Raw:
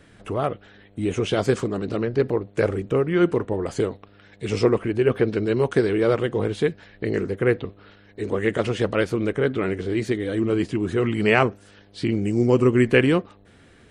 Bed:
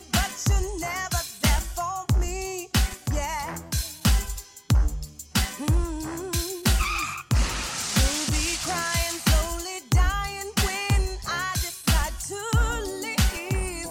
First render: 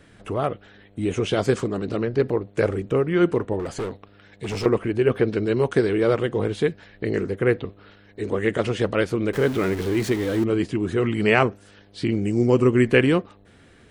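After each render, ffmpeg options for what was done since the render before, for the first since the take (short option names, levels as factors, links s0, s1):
-filter_complex "[0:a]asettb=1/sr,asplit=3[s0][s1][s2];[s0]atrim=end=3.594[s3];[s1]atrim=start=3.59:end=4.66,asetpts=PTS-STARTPTS,afade=t=in:d=0.004:c=qsin,afade=t=out:st=1.066:d=0.004:c=qsin,volume=16.8,asoftclip=hard,volume=0.0596[s4];[s2]atrim=start=4.656[s5];[s3][s4]acrossfade=d=0.004:c1=hsin:c2=qsin[s6];[s6][s5]acrossfade=d=0.004:c1=qsin:c2=hsin,asettb=1/sr,asplit=3[s7][s8][s9];[s7]atrim=end=9.334[s10];[s8]atrim=start=9.33:end=10.44,asetpts=PTS-STARTPTS,afade=t=in:d=0.004:c=qsin,afade=t=out:st=1.106:d=0.004:c=qsin,aeval=exprs='val(0)+0.5*0.0335*sgn(val(0))':c=same[s11];[s9]atrim=start=10.436[s12];[s10][s11]acrossfade=d=0.004:c1=hsin:c2=qsin[s13];[s13][s12]acrossfade=d=0.004:c1=qsin:c2=hsin"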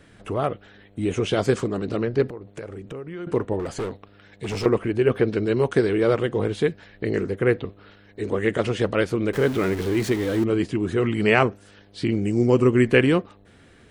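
-filter_complex "[0:a]asettb=1/sr,asplit=3[s0][s1][s2];[s0]atrim=end=2.284[s3];[s1]atrim=start=2.28:end=3.27,asetpts=PTS-STARTPTS,afade=t=in:d=0.004:c=qsin,afade=t=out:st=0.986:d=0.004:c=qsin,acompressor=threshold=0.02:ratio=4:attack=3.2:release=140:knee=1:detection=peak[s4];[s2]atrim=start=3.266[s5];[s3][s4]acrossfade=d=0.004:c1=hsin:c2=qsin[s6];[s6][s5]acrossfade=d=0.004:c1=qsin:c2=hsin"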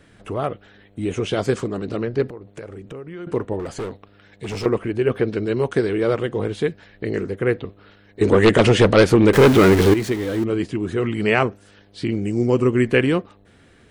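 -filter_complex "[0:a]asettb=1/sr,asplit=3[s0][s1][s2];[s0]atrim=end=8.214[s3];[s1]atrim=start=8.21:end=9.94,asetpts=PTS-STARTPTS,afade=t=in:d=0.004:c=qsin,afade=t=out:st=1.726:d=0.004:c=qsin,aeval=exprs='0.473*sin(PI/2*2.51*val(0)/0.473)':c=same[s4];[s2]atrim=start=9.936[s5];[s3][s4]acrossfade=d=0.004:c1=hsin:c2=qsin[s6];[s6][s5]acrossfade=d=0.004:c1=qsin:c2=hsin"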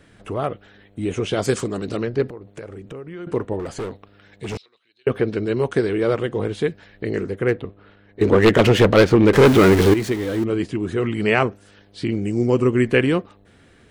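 -filter_complex "[0:a]asettb=1/sr,asplit=3[s0][s1][s2];[s0]atrim=end=1.424[s3];[s1]atrim=start=1.42:end=2.1,asetpts=PTS-STARTPTS,afade=t=in:d=0.004:c=qsin,afade=t=out:st=0.676:d=0.004:c=qsin,highshelf=f=4400:g=11.5[s4];[s2]atrim=start=2.096[s5];[s3][s4]acrossfade=d=0.004:c1=hsin:c2=qsin[s6];[s6][s5]acrossfade=d=0.004:c1=qsin:c2=hsin,asettb=1/sr,asplit=3[s7][s8][s9];[s7]atrim=end=4.574[s10];[s8]atrim=start=4.57:end=5.07,asetpts=PTS-STARTPTS,afade=t=in:d=0.004:c=qsin,afade=t=out:st=0.496:d=0.004:c=qsin,bandpass=f=3900:t=q:w=16[s11];[s9]atrim=start=5.066[s12];[s10][s11]acrossfade=d=0.004:c1=hsin:c2=qsin[s13];[s13][s12]acrossfade=d=0.004:c1=qsin:c2=hsin,asettb=1/sr,asplit=3[s14][s15][s16];[s14]atrim=end=7.484[s17];[s15]atrim=start=7.48:end=9.45,asetpts=PTS-STARTPTS,afade=t=in:d=0.004:c=qsin,afade=t=out:st=1.966:d=0.004:c=qsin,adynamicsmooth=sensitivity=3.5:basefreq=3300[s18];[s16]atrim=start=9.446[s19];[s17][s18]acrossfade=d=0.004:c1=hsin:c2=qsin[s20];[s20][s19]acrossfade=d=0.004:c1=qsin:c2=hsin"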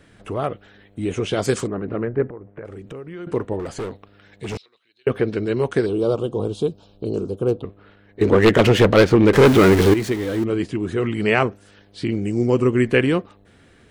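-filter_complex "[0:a]asettb=1/sr,asplit=3[s0][s1][s2];[s0]atrim=end=1.674[s3];[s1]atrim=start=1.67:end=2.65,asetpts=PTS-STARTPTS,afade=t=in:d=0.004:c=qsin,afade=t=out:st=0.976:d=0.004:c=qsin,lowpass=f=2000:w=0.5412,lowpass=f=2000:w=1.3066[s4];[s2]atrim=start=2.646[s5];[s3][s4]acrossfade=d=0.004:c1=hsin:c2=qsin[s6];[s6][s5]acrossfade=d=0.004:c1=qsin:c2=hsin,asettb=1/sr,asplit=3[s7][s8][s9];[s7]atrim=end=5.864[s10];[s8]atrim=start=5.86:end=7.63,asetpts=PTS-STARTPTS,afade=t=in:d=0.004:c=qsin,afade=t=out:st=1.766:d=0.004:c=qsin,asuperstop=centerf=1900:order=4:qfactor=0.92[s11];[s9]atrim=start=7.626[s12];[s10][s11]acrossfade=d=0.004:c1=hsin:c2=qsin[s13];[s13][s12]acrossfade=d=0.004:c1=qsin:c2=hsin"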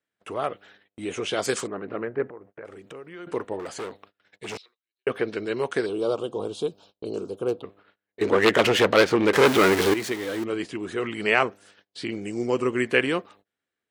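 -af "highpass=f=680:p=1,agate=range=0.0316:threshold=0.00282:ratio=16:detection=peak"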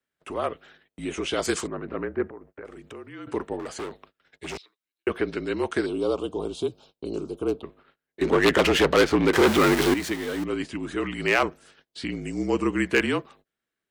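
-af "volume=3.35,asoftclip=hard,volume=0.299,afreqshift=-43"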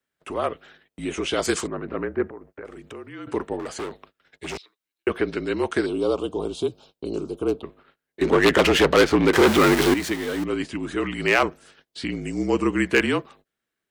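-af "volume=1.33,alimiter=limit=0.708:level=0:latency=1"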